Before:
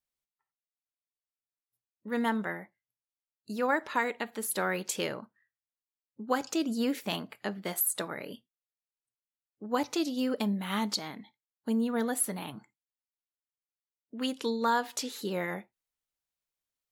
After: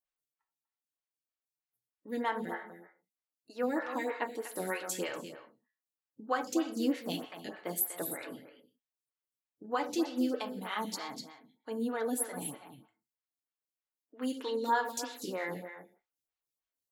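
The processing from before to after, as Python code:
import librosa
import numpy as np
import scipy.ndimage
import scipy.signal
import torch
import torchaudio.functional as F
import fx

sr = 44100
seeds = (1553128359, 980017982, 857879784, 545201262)

y = fx.notch_comb(x, sr, f0_hz=200.0)
y = y + 10.0 ** (-10.5 / 20.0) * np.pad(y, (int(244 * sr / 1000.0), 0))[:len(y)]
y = fx.rev_gated(y, sr, seeds[0], gate_ms=200, shape='falling', drr_db=6.5)
y = fx.stagger_phaser(y, sr, hz=3.2)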